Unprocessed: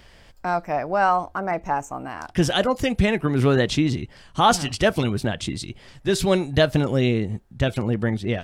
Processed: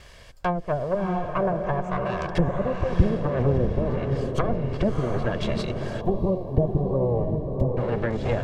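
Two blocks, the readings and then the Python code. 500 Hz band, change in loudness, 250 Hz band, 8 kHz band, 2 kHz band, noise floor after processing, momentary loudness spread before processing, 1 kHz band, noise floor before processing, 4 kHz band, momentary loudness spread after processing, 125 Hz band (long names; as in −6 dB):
−1.5 dB, −3.5 dB, −3.5 dB, below −15 dB, −8.5 dB, −47 dBFS, 11 LU, −7.0 dB, −51 dBFS, −14.0 dB, 5 LU, −0.5 dB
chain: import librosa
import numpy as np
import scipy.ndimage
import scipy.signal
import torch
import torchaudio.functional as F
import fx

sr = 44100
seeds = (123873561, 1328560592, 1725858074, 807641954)

y = fx.lower_of_two(x, sr, delay_ms=1.8)
y = fx.env_lowpass_down(y, sr, base_hz=360.0, full_db=-20.5)
y = fx.echo_diffused(y, sr, ms=687, feedback_pct=44, wet_db=-4.0)
y = fx.spec_box(y, sr, start_s=6.01, length_s=1.76, low_hz=1200.0, high_hz=11000.0, gain_db=-20)
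y = y * 10.0 ** (3.5 / 20.0)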